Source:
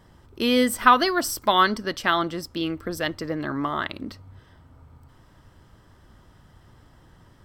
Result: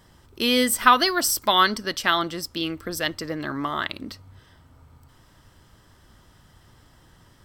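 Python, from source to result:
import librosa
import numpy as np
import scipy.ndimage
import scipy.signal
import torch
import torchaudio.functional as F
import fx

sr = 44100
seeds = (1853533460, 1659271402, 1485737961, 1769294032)

y = fx.high_shelf(x, sr, hz=2300.0, db=9.0)
y = y * librosa.db_to_amplitude(-2.0)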